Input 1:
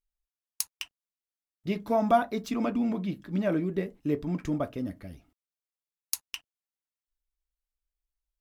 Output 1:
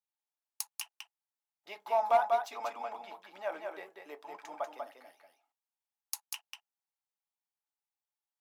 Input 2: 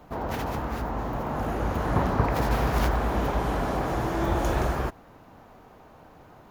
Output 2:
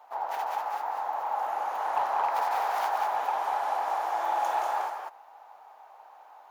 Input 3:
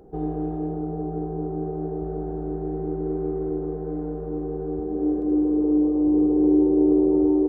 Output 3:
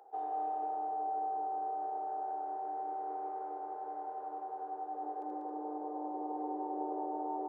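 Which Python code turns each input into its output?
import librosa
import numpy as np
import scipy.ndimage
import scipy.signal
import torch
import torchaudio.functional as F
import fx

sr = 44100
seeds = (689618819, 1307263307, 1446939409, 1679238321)

p1 = fx.ladder_highpass(x, sr, hz=660.0, resonance_pct=45)
p2 = fx.peak_eq(p1, sr, hz=840.0, db=7.5, octaves=0.2)
p3 = p2 + 10.0 ** (-4.5 / 20.0) * np.pad(p2, (int(192 * sr / 1000.0), 0))[:len(p2)]
p4 = 10.0 ** (-24.0 / 20.0) * (np.abs((p3 / 10.0 ** (-24.0 / 20.0) + 3.0) % 4.0 - 2.0) - 1.0)
y = p3 + (p4 * librosa.db_to_amplitude(-10.0))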